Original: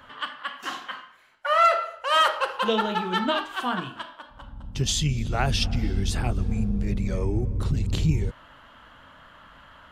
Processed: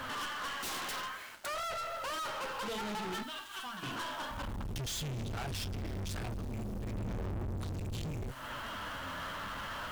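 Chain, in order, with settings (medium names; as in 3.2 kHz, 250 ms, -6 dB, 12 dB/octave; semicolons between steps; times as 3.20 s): compression 16:1, threshold -35 dBFS, peak gain reduction 21.5 dB; 0.58–1.46 s: integer overflow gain 36.5 dB; 3.22–3.83 s: amplifier tone stack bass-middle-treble 5-5-5; bit crusher 11-bit; flange 0.6 Hz, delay 7.5 ms, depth 4.2 ms, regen +50%; valve stage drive 47 dB, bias 0.55; 6.94–7.57 s: bass shelf 220 Hz +11 dB; waveshaping leveller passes 5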